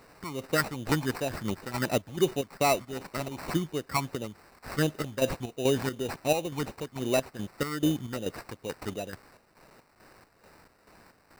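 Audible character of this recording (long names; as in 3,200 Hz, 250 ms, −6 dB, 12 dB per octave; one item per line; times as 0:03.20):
phaser sweep stages 8, 2.7 Hz, lowest notch 500–2,300 Hz
a quantiser's noise floor 10 bits, dither triangular
chopped level 2.3 Hz, depth 60%, duty 55%
aliases and images of a low sample rate 3,300 Hz, jitter 0%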